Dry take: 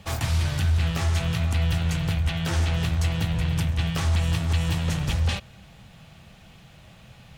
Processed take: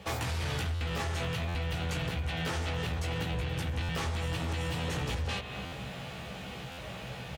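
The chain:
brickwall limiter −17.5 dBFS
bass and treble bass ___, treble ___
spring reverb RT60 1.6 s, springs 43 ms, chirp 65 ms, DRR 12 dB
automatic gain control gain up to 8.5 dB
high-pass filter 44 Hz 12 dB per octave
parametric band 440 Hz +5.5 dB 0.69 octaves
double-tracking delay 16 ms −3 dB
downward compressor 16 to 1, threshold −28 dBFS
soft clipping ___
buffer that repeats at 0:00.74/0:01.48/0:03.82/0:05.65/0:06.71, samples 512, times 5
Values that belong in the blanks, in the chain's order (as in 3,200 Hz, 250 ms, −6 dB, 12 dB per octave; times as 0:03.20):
−5 dB, −4 dB, −24.5 dBFS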